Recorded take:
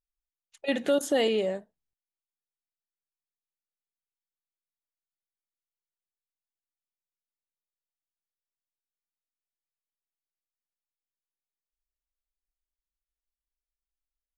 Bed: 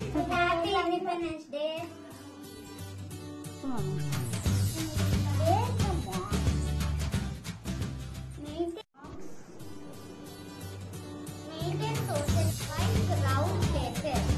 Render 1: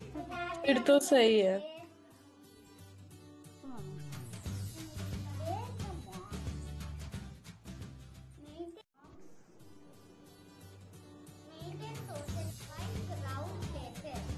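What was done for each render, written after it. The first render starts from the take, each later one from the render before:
mix in bed −12.5 dB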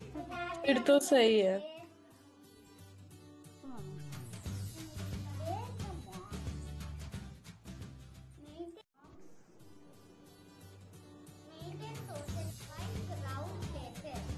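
level −1 dB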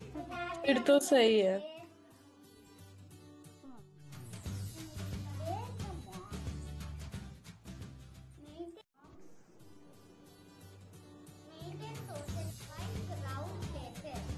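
0:03.49–0:04.33: duck −14.5 dB, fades 0.39 s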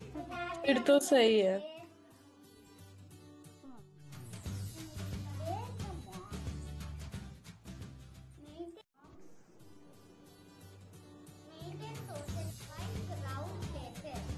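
no processing that can be heard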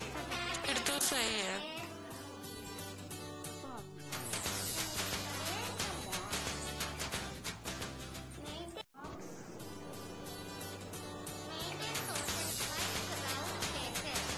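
every bin compressed towards the loudest bin 4 to 1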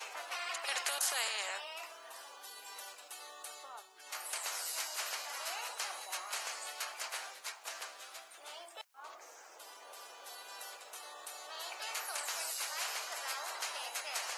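high-pass filter 640 Hz 24 dB per octave
dynamic equaliser 3,500 Hz, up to −7 dB, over −59 dBFS, Q 7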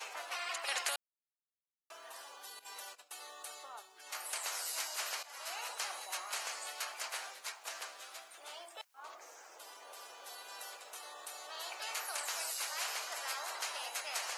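0:00.96–0:01.90: silence
0:02.59–0:03.20: noise gate −53 dBFS, range −14 dB
0:05.23–0:05.78: fade in equal-power, from −13.5 dB

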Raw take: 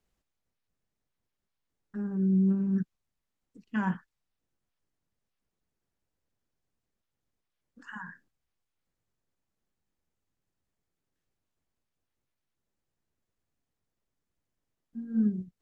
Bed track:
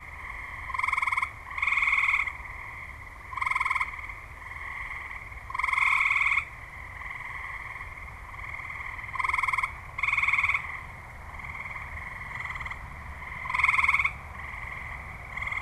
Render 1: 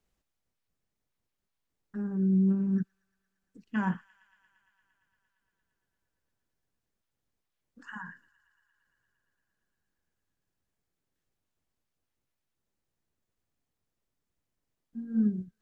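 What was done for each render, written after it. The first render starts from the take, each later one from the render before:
delay with a high-pass on its return 115 ms, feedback 83%, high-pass 2,500 Hz, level −18 dB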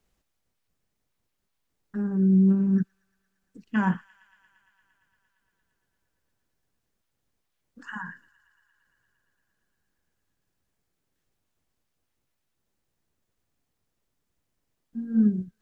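level +5.5 dB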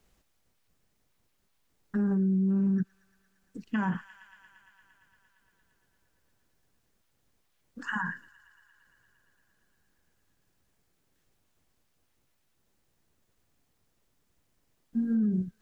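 in parallel at −1 dB: downward compressor, threshold −28 dBFS, peak gain reduction 11 dB
on the sum: brickwall limiter −21.5 dBFS, peak gain reduction 11 dB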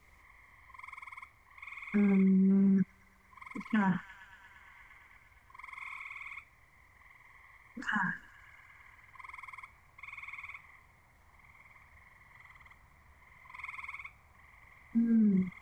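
mix in bed track −21 dB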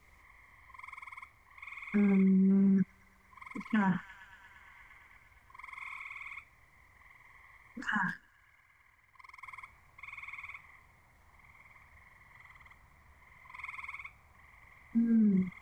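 0:08.08–0:09.43: mu-law and A-law mismatch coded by A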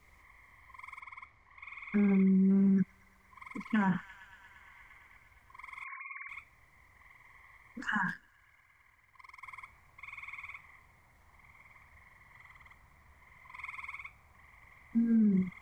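0:01.00–0:02.34: high-frequency loss of the air 85 metres
0:05.84–0:06.29: three sine waves on the formant tracks

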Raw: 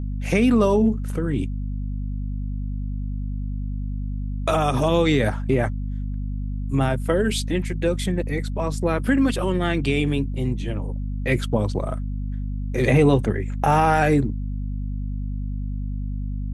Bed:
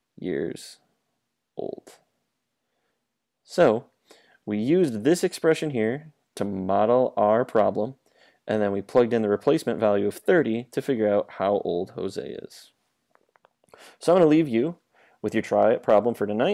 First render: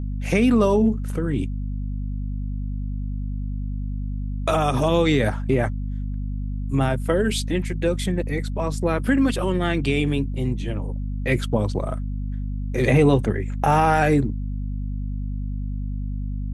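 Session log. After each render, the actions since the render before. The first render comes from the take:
no processing that can be heard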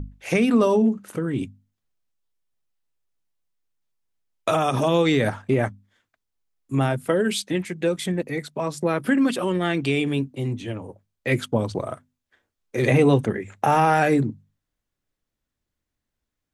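mains-hum notches 50/100/150/200/250 Hz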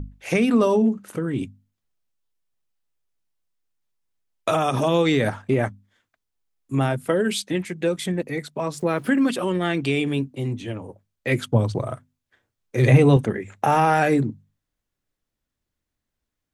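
0:08.76–0:09.30: centre clipping without the shift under −47 dBFS
0:11.46–0:13.17: parametric band 120 Hz +10 dB 0.52 octaves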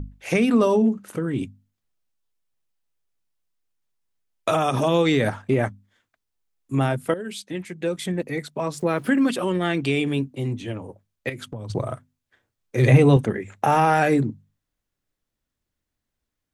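0:07.14–0:08.30: fade in, from −13 dB
0:11.29–0:11.70: downward compressor, threshold −31 dBFS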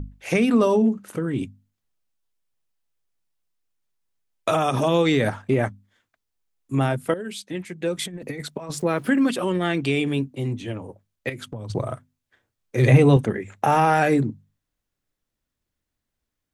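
0:07.96–0:08.82: compressor whose output falls as the input rises −30 dBFS, ratio −0.5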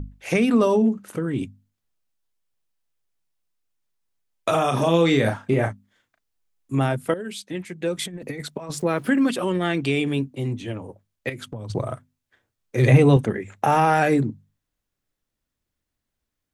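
0:04.50–0:06.73: double-tracking delay 36 ms −7 dB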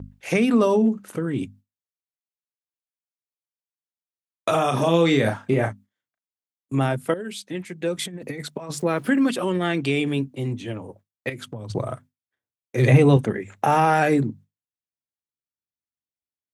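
noise gate with hold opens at −38 dBFS
high-pass filter 82 Hz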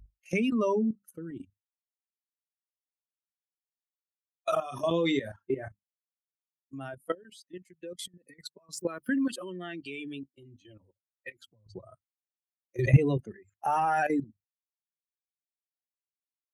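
spectral dynamics exaggerated over time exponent 2
output level in coarse steps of 13 dB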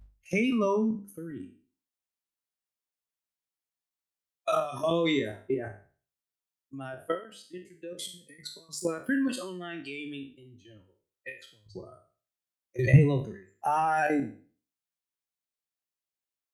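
peak hold with a decay on every bin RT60 0.41 s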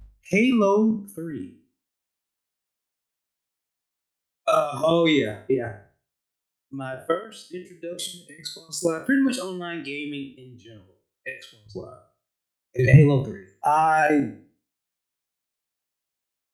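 level +7 dB
brickwall limiter −3 dBFS, peak gain reduction 2.5 dB

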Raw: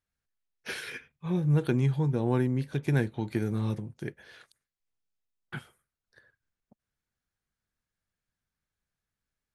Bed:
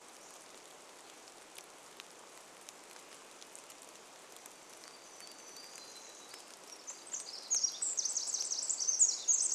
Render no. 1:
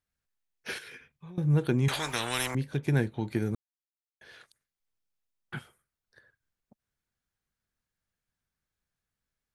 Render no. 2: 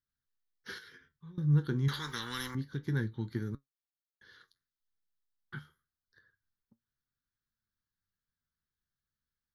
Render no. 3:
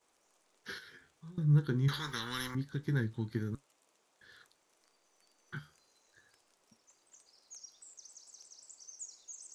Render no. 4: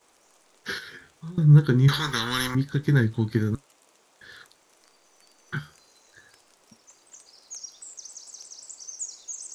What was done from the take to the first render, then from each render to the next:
0:00.78–0:01.38: downward compressor 8 to 1, threshold −43 dBFS; 0:01.88–0:02.55: every bin compressed towards the loudest bin 10 to 1; 0:03.55–0:04.21: silence
flanger 0.28 Hz, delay 7.1 ms, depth 7.4 ms, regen +67%; phaser with its sweep stopped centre 2,500 Hz, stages 6
mix in bed −19 dB
level +12 dB

